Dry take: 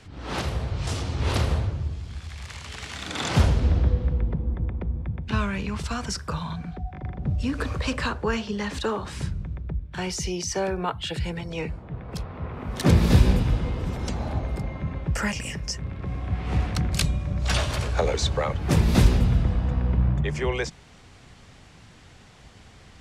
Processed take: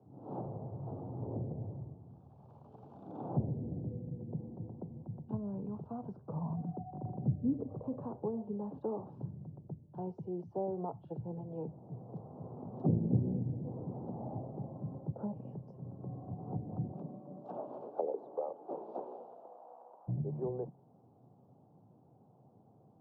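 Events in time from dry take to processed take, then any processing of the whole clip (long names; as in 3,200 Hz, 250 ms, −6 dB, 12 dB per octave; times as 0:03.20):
0:06.36–0:07.63: clip gain +5.5 dB
0:16.91–0:20.07: high-pass filter 180 Hz → 730 Hz 24 dB per octave
whole clip: treble cut that deepens with the level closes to 400 Hz, closed at −19 dBFS; elliptic band-pass filter 120–820 Hz, stop band 40 dB; level −8.5 dB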